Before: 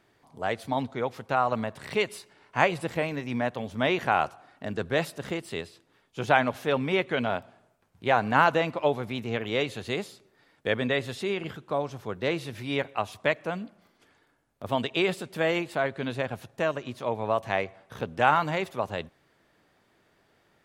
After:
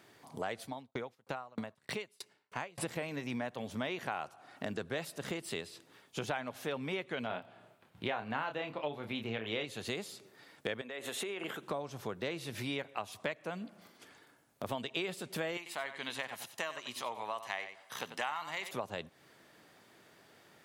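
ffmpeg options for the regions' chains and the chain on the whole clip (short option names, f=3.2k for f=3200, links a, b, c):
-filter_complex "[0:a]asettb=1/sr,asplit=3[a][b][c];[a]atrim=end=0.644[d];[b]atrim=start=0.64:end=2.78,asetpts=PTS-STARTPTS,afade=t=in:d=0.004:c=qsin,afade=t=out:st=2.136:d=0.004:c=qsin,agate=range=-12dB:threshold=-46dB:ratio=16:release=100:detection=peak,acompressor=mode=upward:threshold=-41dB:ratio=2.5:attack=3.2:release=140:knee=2.83:detection=peak,aeval=exprs='val(0)*pow(10,-40*if(lt(mod(3.2*n/s,1),2*abs(3.2)/1000),1-mod(3.2*n/s,1)/(2*abs(3.2)/1000),(mod(3.2*n/s,1)-2*abs(3.2)/1000)/(1-2*abs(3.2)/1000))/20)':c=same[e];[c]atrim=start=2.776[f];[d][e]acrossfade=d=0.004:c1=hsin:c2=qsin[g];[g][f]acrossfade=d=0.004:c1=qsin:c2=hsin,asettb=1/sr,asplit=3[h][i][j];[h]atrim=end=7.274[k];[i]atrim=start=7.27:end=9.65,asetpts=PTS-STARTPTS,afade=t=in:d=0.004:c=qsin,afade=t=out:st=2.376:d=0.004:c=qsin,highshelf=f=4.5k:t=q:w=1.5:g=-7.5,asplit=2[l][m];[m]adelay=27,volume=-6.5dB[n];[l][n]amix=inputs=2:normalize=0,atrim=end_sample=104958[o];[j]atrim=start=9.646[p];[k][o]acrossfade=d=0.004:c1=hsin:c2=qsin[q];[q][p]acrossfade=d=0.004:c1=qsin:c2=hsin,asettb=1/sr,asplit=3[r][s][t];[r]atrim=end=10.814[u];[s]atrim=start=10.81:end=11.63,asetpts=PTS-STARTPTS,afade=t=in:d=0.004:c=qsin,afade=t=out:st=0.816:d=0.004:c=qsin,highpass=330,equalizer=f=4.9k:w=2.7:g=-13,acompressor=threshold=-36dB:ratio=6:attack=3.2:release=140:knee=1:detection=peak[v];[t]atrim=start=11.626[w];[u][v]acrossfade=d=0.004:c1=hsin:c2=qsin[x];[x][w]acrossfade=d=0.004:c1=qsin:c2=hsin,asettb=1/sr,asplit=3[y][z][aa];[y]atrim=end=15.574[ab];[z]atrim=start=15.57:end=18.71,asetpts=PTS-STARTPTS,afade=t=in:d=0.004:c=qsin,afade=t=out:st=3.136:d=0.004:c=qsin,highpass=f=1.4k:p=1,aecho=1:1:1:0.32,atrim=end_sample=138474,aecho=1:1:90:0.251,atrim=end_sample=138474[ac];[aa]atrim=start=18.706[ad];[ab][ac]acrossfade=d=0.004:c1=hsin:c2=qsin[ae];[ae][ad]acrossfade=d=0.004:c1=qsin:c2=hsin,highpass=110,acompressor=threshold=-40dB:ratio=5,highshelf=f=3.9k:g=6.5,volume=3.5dB"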